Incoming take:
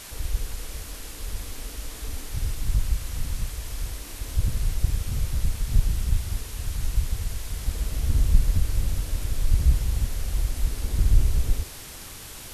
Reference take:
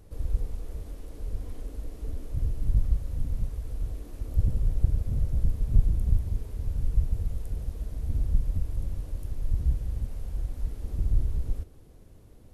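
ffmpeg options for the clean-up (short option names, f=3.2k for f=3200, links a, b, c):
-af "afwtdn=0.01,asetnsamples=n=441:p=0,asendcmd='7.66 volume volume -6dB',volume=0dB"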